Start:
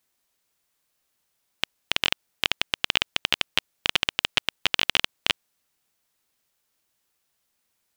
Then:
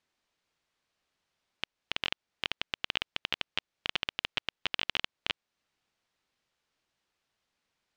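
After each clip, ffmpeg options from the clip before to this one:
-af "lowpass=4500,alimiter=limit=0.335:level=0:latency=1:release=361,volume=0.841"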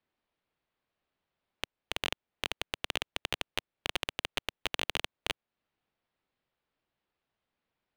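-filter_complex "[0:a]acrossover=split=170|930|4600[s0][s1][s2][s3];[s2]aeval=exprs='0.211*(cos(1*acos(clip(val(0)/0.211,-1,1)))-cos(1*PI/2))+0.0299*(cos(3*acos(clip(val(0)/0.211,-1,1)))-cos(3*PI/2))+0.0237*(cos(6*acos(clip(val(0)/0.211,-1,1)))-cos(6*PI/2))':c=same[s4];[s3]acrusher=bits=4:dc=4:mix=0:aa=0.000001[s5];[s0][s1][s4][s5]amix=inputs=4:normalize=0"

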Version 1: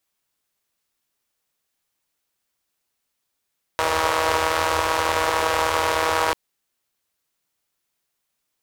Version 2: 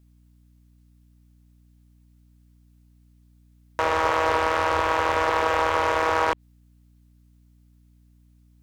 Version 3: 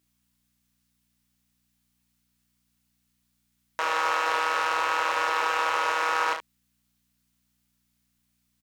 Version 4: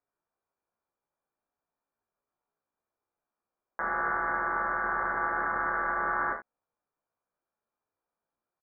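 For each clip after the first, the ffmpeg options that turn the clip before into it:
-filter_complex "[0:a]acrossover=split=3600[s0][s1];[s1]acompressor=threshold=0.00447:ratio=4:attack=1:release=60[s2];[s0][s2]amix=inputs=2:normalize=0,aeval=exprs='val(0)+0.00178*(sin(2*PI*60*n/s)+sin(2*PI*2*60*n/s)/2+sin(2*PI*3*60*n/s)/3+sin(2*PI*4*60*n/s)/4+sin(2*PI*5*60*n/s)/5)':c=same,aeval=exprs='clip(val(0),-1,0.266)':c=same"
-filter_complex "[0:a]highpass=f=1400:p=1,asplit=2[s0][s1];[s1]aecho=0:1:32|71:0.562|0.355[s2];[s0][s2]amix=inputs=2:normalize=0"
-filter_complex "[0:a]highpass=1300,asplit=2[s0][s1];[s1]adelay=16,volume=0.398[s2];[s0][s2]amix=inputs=2:normalize=0,lowpass=f=2200:t=q:w=0.5098,lowpass=f=2200:t=q:w=0.6013,lowpass=f=2200:t=q:w=0.9,lowpass=f=2200:t=q:w=2.563,afreqshift=-2600"

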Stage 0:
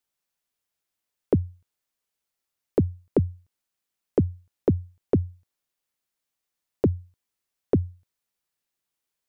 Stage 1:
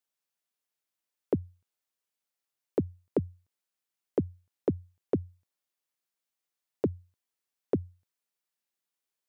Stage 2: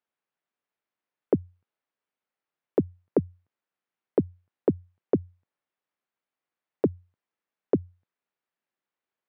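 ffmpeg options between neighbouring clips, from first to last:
-af "highpass=f=200:p=1,volume=0.596"
-af "highpass=120,lowpass=2100,volume=1.78"

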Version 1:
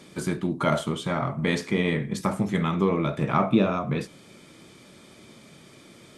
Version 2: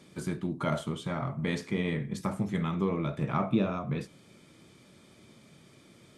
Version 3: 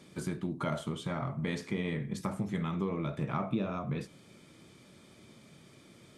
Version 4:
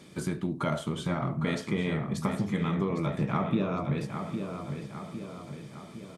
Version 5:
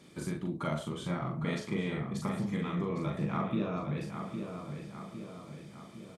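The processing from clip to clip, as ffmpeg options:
-af "equalizer=f=99:w=0.66:g=5,volume=0.398"
-af "acompressor=threshold=0.0251:ratio=2"
-filter_complex "[0:a]asplit=2[s0][s1];[s1]adelay=807,lowpass=f=3900:p=1,volume=0.447,asplit=2[s2][s3];[s3]adelay=807,lowpass=f=3900:p=1,volume=0.55,asplit=2[s4][s5];[s5]adelay=807,lowpass=f=3900:p=1,volume=0.55,asplit=2[s6][s7];[s7]adelay=807,lowpass=f=3900:p=1,volume=0.55,asplit=2[s8][s9];[s9]adelay=807,lowpass=f=3900:p=1,volume=0.55,asplit=2[s10][s11];[s11]adelay=807,lowpass=f=3900:p=1,volume=0.55,asplit=2[s12][s13];[s13]adelay=807,lowpass=f=3900:p=1,volume=0.55[s14];[s0][s2][s4][s6][s8][s10][s12][s14]amix=inputs=8:normalize=0,volume=1.58"
-filter_complex "[0:a]asplit=2[s0][s1];[s1]adelay=40,volume=0.708[s2];[s0][s2]amix=inputs=2:normalize=0,volume=0.501"

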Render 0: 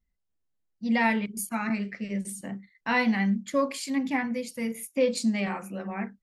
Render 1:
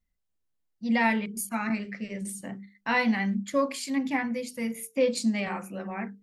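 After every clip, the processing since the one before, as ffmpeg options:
-af "bandreject=f=50:t=h:w=6,bandreject=f=100:t=h:w=6,bandreject=f=150:t=h:w=6,bandreject=f=200:t=h:w=6,bandreject=f=250:t=h:w=6,bandreject=f=300:t=h:w=6,bandreject=f=350:t=h:w=6,bandreject=f=400:t=h:w=6,bandreject=f=450:t=h:w=6"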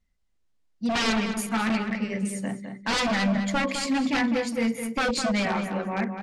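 -filter_complex "[0:a]aeval=exprs='0.0531*(abs(mod(val(0)/0.0531+3,4)-2)-1)':c=same,lowpass=7500,asplit=2[s0][s1];[s1]adelay=208,lowpass=f=2900:p=1,volume=0.447,asplit=2[s2][s3];[s3]adelay=208,lowpass=f=2900:p=1,volume=0.29,asplit=2[s4][s5];[s5]adelay=208,lowpass=f=2900:p=1,volume=0.29,asplit=2[s6][s7];[s7]adelay=208,lowpass=f=2900:p=1,volume=0.29[s8];[s0][s2][s4][s6][s8]amix=inputs=5:normalize=0,volume=2"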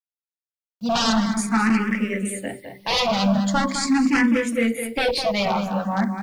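-filter_complex "[0:a]acrusher=bits=9:mix=0:aa=0.000001,asplit=2[s0][s1];[s1]afreqshift=0.42[s2];[s0][s2]amix=inputs=2:normalize=1,volume=2.24"

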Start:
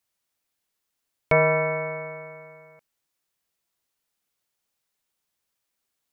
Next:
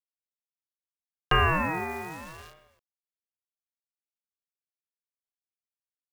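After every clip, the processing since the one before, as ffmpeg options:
-af "agate=range=0.0224:threshold=0.00708:ratio=3:detection=peak,acrusher=bits=8:dc=4:mix=0:aa=0.000001,aeval=exprs='val(0)*sin(2*PI*420*n/s+420*0.45/0.78*sin(2*PI*0.78*n/s))':c=same"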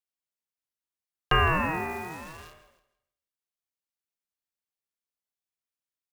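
-af "aecho=1:1:162|324|486:0.178|0.0533|0.016"

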